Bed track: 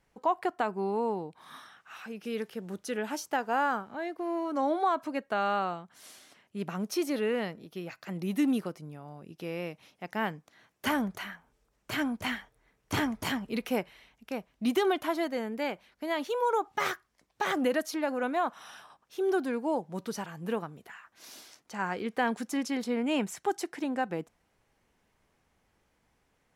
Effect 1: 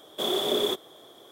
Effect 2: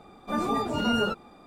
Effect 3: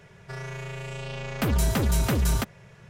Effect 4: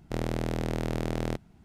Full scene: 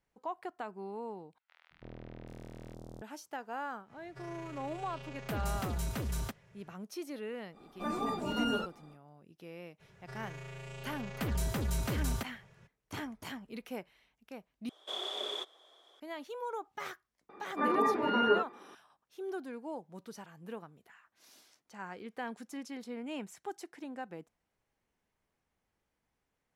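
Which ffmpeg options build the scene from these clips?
-filter_complex "[3:a]asplit=2[a][b];[2:a]asplit=2[c][d];[0:a]volume=-11.5dB[e];[4:a]acrossover=split=1200|3900[f][g][h];[f]adelay=330[i];[h]adelay=780[j];[i][g][j]amix=inputs=3:normalize=0[k];[c]equalizer=f=95:w=4:g=-12.5[l];[1:a]highpass=690,lowpass=6.3k[m];[d]highpass=280,equalizer=f=400:t=q:w=4:g=7,equalizer=f=680:t=q:w=4:g=-7,equalizer=f=1k:t=q:w=4:g=6,equalizer=f=1.8k:t=q:w=4:g=8,equalizer=f=3.2k:t=q:w=4:g=-9,lowpass=f=3.4k:w=0.5412,lowpass=f=3.4k:w=1.3066[n];[e]asplit=3[o][p][q];[o]atrim=end=1.384[r];[k]atrim=end=1.64,asetpts=PTS-STARTPTS,volume=-17.5dB[s];[p]atrim=start=3.016:end=14.694[t];[m]atrim=end=1.31,asetpts=PTS-STARTPTS,volume=-8.5dB[u];[q]atrim=start=15.996[v];[a]atrim=end=2.89,asetpts=PTS-STARTPTS,volume=-12.5dB,afade=t=in:d=0.05,afade=t=out:st=2.84:d=0.05,adelay=3870[w];[l]atrim=end=1.46,asetpts=PTS-STARTPTS,volume=-7.5dB,afade=t=in:d=0.05,afade=t=out:st=1.41:d=0.05,adelay=7520[x];[b]atrim=end=2.89,asetpts=PTS-STARTPTS,volume=-10dB,afade=t=in:d=0.02,afade=t=out:st=2.87:d=0.02,adelay=9790[y];[n]atrim=end=1.46,asetpts=PTS-STARTPTS,volume=-2.5dB,afade=t=in:d=0.004:c=hsin,afade=t=out:st=1.456:d=0.004:c=hsin,adelay=17290[z];[r][s]acrossfade=d=0.004:c1=hsin:c2=hsin[aa];[aa][t]acrossfade=d=0.004:c1=hsin:c2=hsin[ab];[ab][u]acrossfade=d=0.004:c1=hsin:c2=hsin[ac];[ac][v]acrossfade=d=0.004:c1=hsin:c2=hsin[ad];[ad][w][x][y][z]amix=inputs=5:normalize=0"

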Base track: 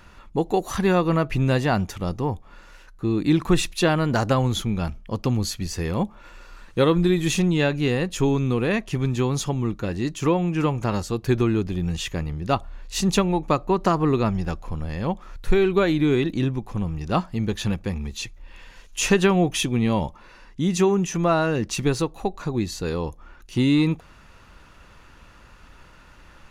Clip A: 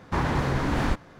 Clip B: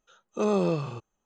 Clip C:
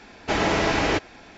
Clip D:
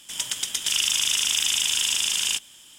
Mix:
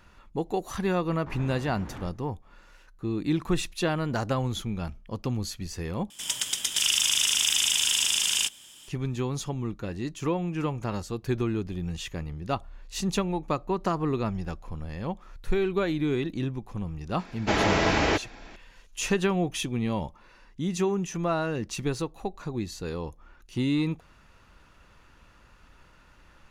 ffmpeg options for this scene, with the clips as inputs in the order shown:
-filter_complex "[0:a]volume=-7dB[a];[1:a]aemphasis=mode=reproduction:type=75kf[b];[a]asplit=2[c][d];[c]atrim=end=6.104[e];[4:a]atrim=end=2.78,asetpts=PTS-STARTPTS,volume=-1dB[f];[d]atrim=start=8.876[g];[b]atrim=end=1.19,asetpts=PTS-STARTPTS,volume=-16dB,afade=t=in:d=0.004:c=hsin,afade=t=out:st=1.186:d=0.004:c=hsin,adelay=1140[h];[3:a]atrim=end=1.37,asetpts=PTS-STARTPTS,volume=-1.5dB,afade=t=in:d=0.004:c=hsin,afade=t=out:st=1.366:d=0.004:c=hsin,adelay=17190[i];[e][f]acrossfade=d=0.004:c1=hsin:c2=hsin[j];[j][g]acrossfade=d=0.004:c1=hsin:c2=hsin[k];[k][h][i]amix=inputs=3:normalize=0"

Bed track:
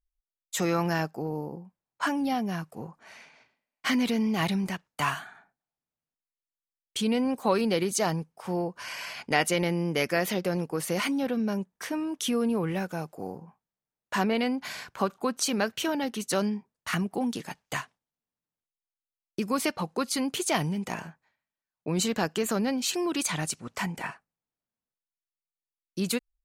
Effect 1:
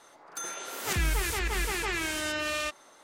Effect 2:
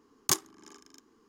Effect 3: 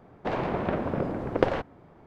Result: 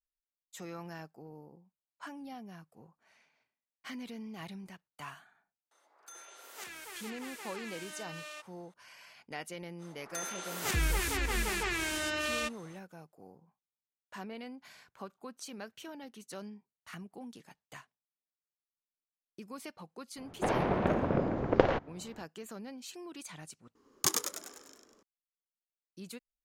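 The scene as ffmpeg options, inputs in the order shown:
-filter_complex "[1:a]asplit=2[a][b];[0:a]volume=-17.5dB[c];[a]highpass=410[d];[3:a]aresample=16000,aresample=44100[e];[2:a]asplit=8[f][g][h][i][j][k][l][m];[g]adelay=99,afreqshift=96,volume=-4dB[n];[h]adelay=198,afreqshift=192,volume=-9.8dB[o];[i]adelay=297,afreqshift=288,volume=-15.7dB[p];[j]adelay=396,afreqshift=384,volume=-21.5dB[q];[k]adelay=495,afreqshift=480,volume=-27.4dB[r];[l]adelay=594,afreqshift=576,volume=-33.2dB[s];[m]adelay=693,afreqshift=672,volume=-39.1dB[t];[f][n][o][p][q][r][s][t]amix=inputs=8:normalize=0[u];[c]asplit=2[v][w];[v]atrim=end=23.754[x];[u]atrim=end=1.28,asetpts=PTS-STARTPTS,volume=-3dB[y];[w]atrim=start=25.026[z];[d]atrim=end=3.03,asetpts=PTS-STARTPTS,volume=-14dB,afade=t=in:d=0.004:c=hsin,afade=t=out:st=3.026:d=0.004:c=hsin,adelay=5710[aa];[b]atrim=end=3.03,asetpts=PTS-STARTPTS,volume=-2.5dB,afade=t=in:d=0.05,afade=t=out:st=2.98:d=0.05,adelay=431298S[ab];[e]atrim=end=2.06,asetpts=PTS-STARTPTS,volume=-1dB,afade=t=in:d=0.004:c=hsin,afade=t=out:st=2.056:d=0.004:c=hsin,adelay=20170[ac];[x][y]acrossfade=d=0.004:c1=hsin:c2=hsin[ad];[ad][z]acrossfade=d=0.004:c1=hsin:c2=hsin[ae];[ae][aa][ab][ac]amix=inputs=4:normalize=0"

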